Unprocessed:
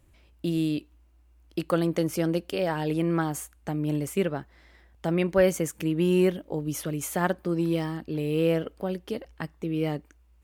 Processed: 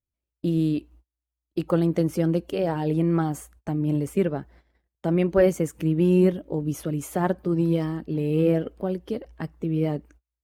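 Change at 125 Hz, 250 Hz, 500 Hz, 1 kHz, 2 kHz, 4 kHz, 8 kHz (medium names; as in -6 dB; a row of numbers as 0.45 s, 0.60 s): +5.0 dB, +3.5 dB, +2.0 dB, +0.5 dB, -3.5 dB, -5.0 dB, -5.0 dB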